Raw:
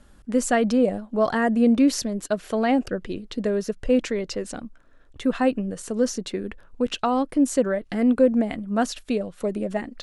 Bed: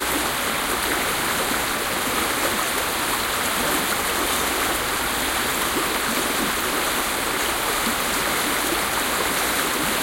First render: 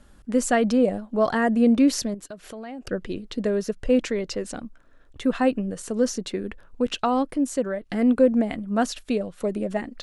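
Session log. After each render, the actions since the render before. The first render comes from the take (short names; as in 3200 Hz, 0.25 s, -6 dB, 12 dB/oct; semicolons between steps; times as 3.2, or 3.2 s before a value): 2.14–2.87 compressor 3:1, threshold -39 dBFS; 7.36–7.9 gain -4 dB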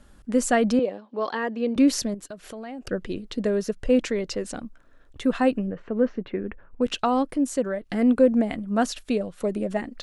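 0.79–1.76 speaker cabinet 410–5000 Hz, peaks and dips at 680 Hz -9 dB, 1400 Hz -6 dB, 2000 Hz -4 dB; 5.67–6.82 LPF 2400 Hz 24 dB/oct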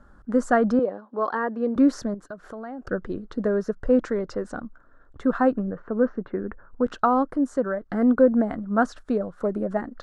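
LPF 7300 Hz 12 dB/oct; resonant high shelf 1900 Hz -10 dB, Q 3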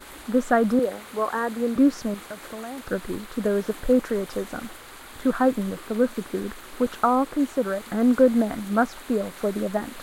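add bed -20.5 dB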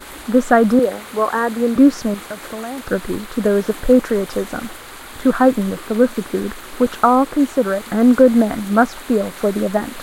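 gain +7.5 dB; limiter -1 dBFS, peak gain reduction 2 dB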